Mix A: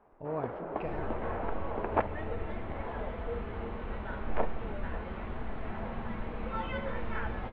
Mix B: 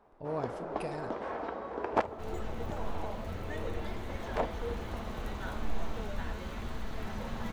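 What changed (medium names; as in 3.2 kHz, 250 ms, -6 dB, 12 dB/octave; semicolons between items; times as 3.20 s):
second sound: entry +1.35 s; master: remove low-pass 2.7 kHz 24 dB/octave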